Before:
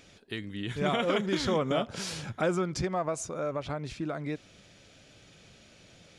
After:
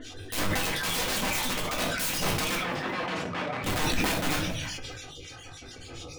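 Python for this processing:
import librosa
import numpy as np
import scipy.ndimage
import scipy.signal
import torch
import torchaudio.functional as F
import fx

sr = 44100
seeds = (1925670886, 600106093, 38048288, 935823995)

p1 = fx.spec_dropout(x, sr, seeds[0], share_pct=36)
p2 = fx.over_compress(p1, sr, threshold_db=-36.0, ratio=-0.5)
p3 = p1 + (p2 * librosa.db_to_amplitude(2.0))
p4 = fx.quant_float(p3, sr, bits=4)
p5 = fx.env_flanger(p4, sr, rest_ms=3.1, full_db=-24.5)
p6 = fx.harmonic_tremolo(p5, sr, hz=7.1, depth_pct=100, crossover_hz=2000.0)
p7 = (np.mod(10.0 ** (35.5 / 20.0) * p6 + 1.0, 2.0) - 1.0) / 10.0 ** (35.5 / 20.0)
p8 = fx.bandpass_edges(p7, sr, low_hz=130.0, high_hz=2600.0, at=(2.55, 3.64))
p9 = p8 + fx.echo_feedback(p8, sr, ms=194, feedback_pct=43, wet_db=-23.5, dry=0)
p10 = fx.room_shoebox(p9, sr, seeds[1], volume_m3=240.0, walls='furnished', distance_m=2.0)
p11 = fx.sustainer(p10, sr, db_per_s=24.0)
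y = p11 * librosa.db_to_amplitude(8.5)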